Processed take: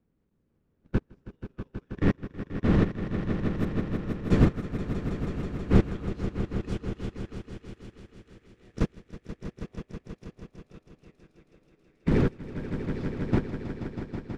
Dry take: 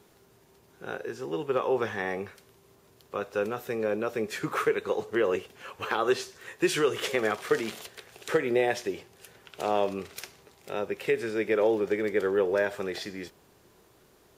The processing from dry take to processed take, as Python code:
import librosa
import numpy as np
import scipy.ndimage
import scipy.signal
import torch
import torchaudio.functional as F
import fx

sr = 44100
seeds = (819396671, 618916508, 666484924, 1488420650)

p1 = fx.dmg_wind(x, sr, seeds[0], corner_hz=390.0, level_db=-26.0)
p2 = fx.peak_eq(p1, sr, hz=730.0, db=-11.5, octaves=1.4)
p3 = fx.level_steps(p2, sr, step_db=23)
p4 = fx.air_absorb(p3, sr, metres=58.0)
p5 = p4 + fx.echo_swell(p4, sr, ms=161, loudest=5, wet_db=-5, dry=0)
p6 = fx.upward_expand(p5, sr, threshold_db=-43.0, expansion=2.5)
y = p6 * librosa.db_to_amplitude(7.0)